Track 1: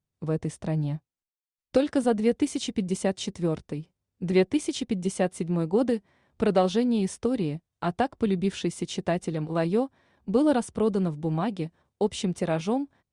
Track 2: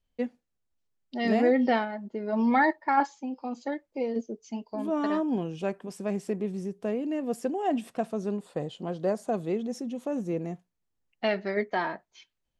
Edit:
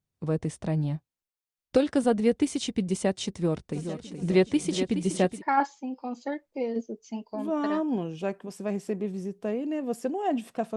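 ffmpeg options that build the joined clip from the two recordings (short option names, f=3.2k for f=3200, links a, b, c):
-filter_complex "[0:a]asplit=3[a][b][c];[a]afade=t=out:st=3.71:d=0.02[d];[b]aecho=1:1:422|844|1266|1688|2110|2532:0.355|0.195|0.107|0.059|0.0325|0.0179,afade=t=in:st=3.71:d=0.02,afade=t=out:st=5.43:d=0.02[e];[c]afade=t=in:st=5.43:d=0.02[f];[d][e][f]amix=inputs=3:normalize=0,apad=whole_dur=10.76,atrim=end=10.76,atrim=end=5.43,asetpts=PTS-STARTPTS[g];[1:a]atrim=start=2.71:end=8.16,asetpts=PTS-STARTPTS[h];[g][h]acrossfade=d=0.12:c1=tri:c2=tri"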